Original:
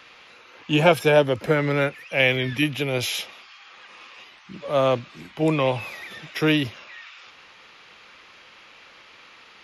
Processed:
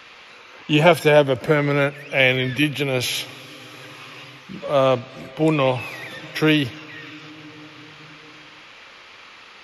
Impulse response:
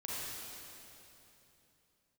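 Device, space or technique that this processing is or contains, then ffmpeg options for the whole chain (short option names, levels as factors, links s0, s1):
compressed reverb return: -filter_complex "[0:a]asplit=2[s0][s1];[1:a]atrim=start_sample=2205[s2];[s1][s2]afir=irnorm=-1:irlink=0,acompressor=threshold=0.0224:ratio=10,volume=0.422[s3];[s0][s3]amix=inputs=2:normalize=0,volume=1.33"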